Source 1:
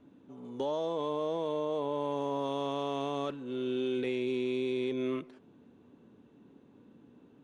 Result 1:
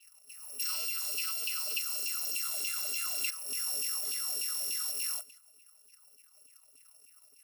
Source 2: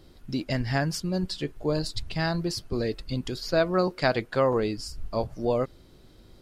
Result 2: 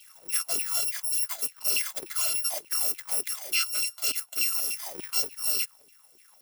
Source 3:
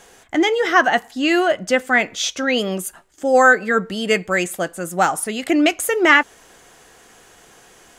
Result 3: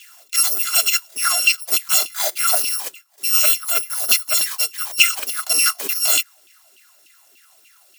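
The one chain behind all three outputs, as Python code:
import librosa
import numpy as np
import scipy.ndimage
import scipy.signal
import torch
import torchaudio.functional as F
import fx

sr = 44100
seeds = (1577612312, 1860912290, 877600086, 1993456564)

y = fx.bit_reversed(x, sr, seeds[0], block=256)
y = fx.bass_treble(y, sr, bass_db=10, treble_db=4)
y = fx.filter_lfo_highpass(y, sr, shape='saw_down', hz=3.4, low_hz=320.0, high_hz=2900.0, q=6.3)
y = fx.rider(y, sr, range_db=5, speed_s=0.5)
y = y * 10.0 ** (-5.5 / 20.0)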